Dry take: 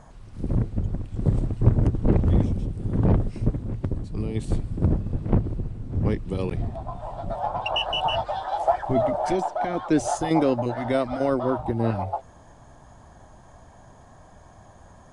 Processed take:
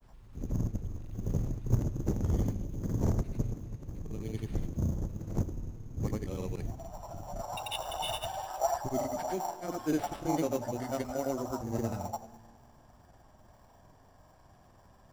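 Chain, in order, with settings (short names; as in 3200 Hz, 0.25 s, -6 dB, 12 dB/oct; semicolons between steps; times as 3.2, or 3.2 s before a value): Schroeder reverb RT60 1.8 s, combs from 27 ms, DRR 15 dB; sample-rate reducer 6500 Hz, jitter 0%; grains, pitch spread up and down by 0 st; gain -8.5 dB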